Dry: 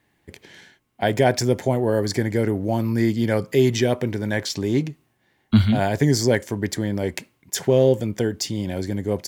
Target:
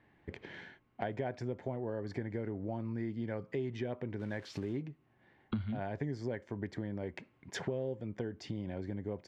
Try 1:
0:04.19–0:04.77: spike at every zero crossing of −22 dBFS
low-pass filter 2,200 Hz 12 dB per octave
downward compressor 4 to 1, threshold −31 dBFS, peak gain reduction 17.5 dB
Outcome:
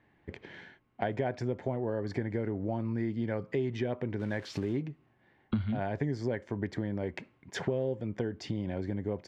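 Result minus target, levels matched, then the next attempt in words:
downward compressor: peak gain reduction −5 dB
0:04.19–0:04.77: spike at every zero crossing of −22 dBFS
low-pass filter 2,200 Hz 12 dB per octave
downward compressor 4 to 1, threshold −38 dBFS, peak gain reduction 23 dB

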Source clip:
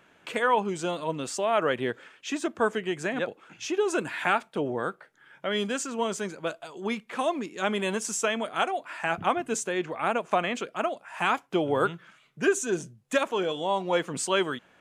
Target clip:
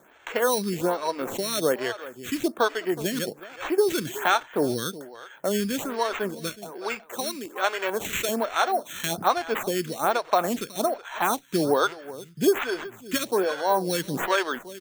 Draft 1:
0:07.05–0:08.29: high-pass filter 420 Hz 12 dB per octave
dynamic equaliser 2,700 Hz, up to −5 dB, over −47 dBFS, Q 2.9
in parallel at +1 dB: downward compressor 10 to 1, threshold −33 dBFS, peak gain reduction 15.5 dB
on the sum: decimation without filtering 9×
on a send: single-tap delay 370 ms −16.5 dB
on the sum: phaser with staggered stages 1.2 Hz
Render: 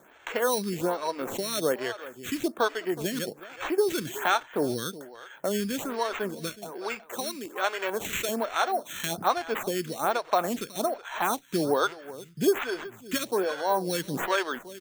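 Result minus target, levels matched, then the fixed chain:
downward compressor: peak gain reduction +9 dB
0:07.05–0:08.29: high-pass filter 420 Hz 12 dB per octave
dynamic equaliser 2,700 Hz, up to −5 dB, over −47 dBFS, Q 2.9
in parallel at +1 dB: downward compressor 10 to 1, threshold −23 dBFS, peak gain reduction 6.5 dB
on the sum: decimation without filtering 9×
on a send: single-tap delay 370 ms −16.5 dB
on the sum: phaser with staggered stages 1.2 Hz

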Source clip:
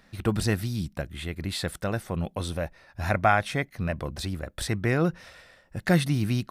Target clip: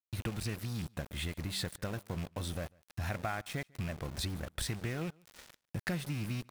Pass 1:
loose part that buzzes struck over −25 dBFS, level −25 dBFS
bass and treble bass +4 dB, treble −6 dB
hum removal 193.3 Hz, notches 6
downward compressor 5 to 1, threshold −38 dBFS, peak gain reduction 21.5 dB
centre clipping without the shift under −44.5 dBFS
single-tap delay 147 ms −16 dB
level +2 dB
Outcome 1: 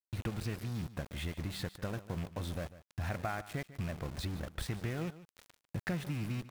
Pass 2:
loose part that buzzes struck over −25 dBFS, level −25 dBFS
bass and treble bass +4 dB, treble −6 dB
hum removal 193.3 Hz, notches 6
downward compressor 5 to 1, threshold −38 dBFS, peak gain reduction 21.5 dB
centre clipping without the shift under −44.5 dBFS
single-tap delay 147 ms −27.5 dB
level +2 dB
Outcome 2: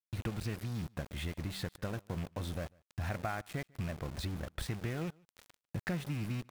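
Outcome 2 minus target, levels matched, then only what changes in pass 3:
8,000 Hz band −5.5 dB
add after downward compressor: high-shelf EQ 3,800 Hz +11 dB

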